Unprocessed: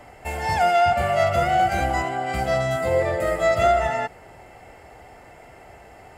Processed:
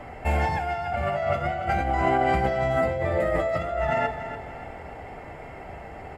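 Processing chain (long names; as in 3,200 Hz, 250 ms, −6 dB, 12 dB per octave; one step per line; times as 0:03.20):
bass and treble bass +4 dB, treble −13 dB
mains-hum notches 50/100 Hz
compressor whose output falls as the input rises −26 dBFS, ratio −1
repeating echo 289 ms, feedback 41%, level −11 dB
on a send at −6.5 dB: convolution reverb RT60 0.50 s, pre-delay 3 ms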